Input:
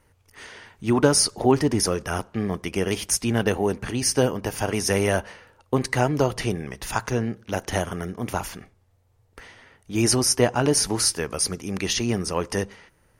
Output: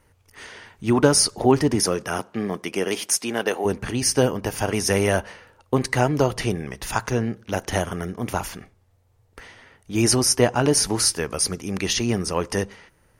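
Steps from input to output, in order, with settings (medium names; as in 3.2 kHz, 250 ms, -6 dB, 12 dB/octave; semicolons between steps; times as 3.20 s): 1.75–3.64 s: high-pass 110 Hz -> 420 Hz 12 dB/octave; trim +1.5 dB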